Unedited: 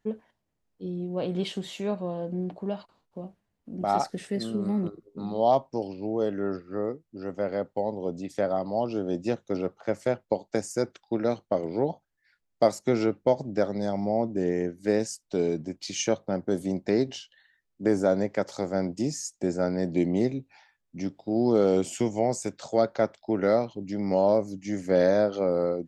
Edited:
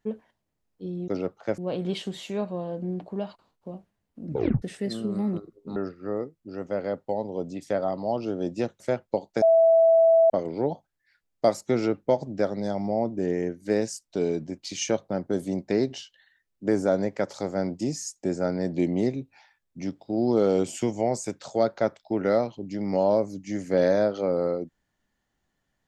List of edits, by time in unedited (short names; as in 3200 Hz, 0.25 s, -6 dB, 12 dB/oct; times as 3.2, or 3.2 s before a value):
3.75 tape stop 0.37 s
5.26–6.44 cut
9.48–9.98 move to 1.08
10.6–11.48 bleep 658 Hz -14 dBFS